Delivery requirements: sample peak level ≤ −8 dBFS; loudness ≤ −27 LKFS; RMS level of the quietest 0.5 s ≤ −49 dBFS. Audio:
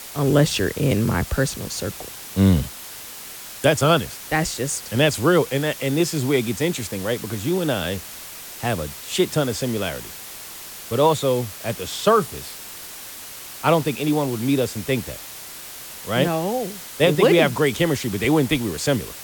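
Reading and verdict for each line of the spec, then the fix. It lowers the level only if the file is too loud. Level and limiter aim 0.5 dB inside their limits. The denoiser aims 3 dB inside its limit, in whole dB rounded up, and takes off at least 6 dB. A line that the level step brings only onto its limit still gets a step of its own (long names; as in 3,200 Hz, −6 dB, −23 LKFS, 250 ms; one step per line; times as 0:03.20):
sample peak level −4.0 dBFS: out of spec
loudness −21.5 LKFS: out of spec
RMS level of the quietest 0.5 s −37 dBFS: out of spec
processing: broadband denoise 9 dB, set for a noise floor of −37 dBFS
level −6 dB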